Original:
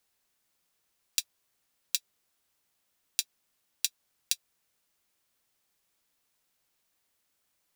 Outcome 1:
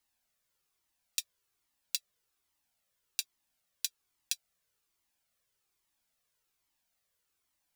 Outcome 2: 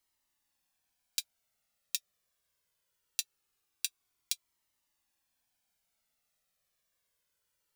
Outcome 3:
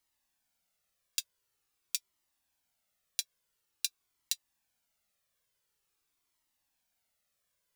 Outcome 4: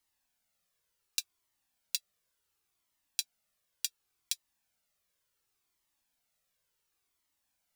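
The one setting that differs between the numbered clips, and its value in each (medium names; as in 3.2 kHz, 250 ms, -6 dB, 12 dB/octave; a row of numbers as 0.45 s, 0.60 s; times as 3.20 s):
Shepard-style flanger, rate: 1.2 Hz, 0.22 Hz, 0.47 Hz, 0.69 Hz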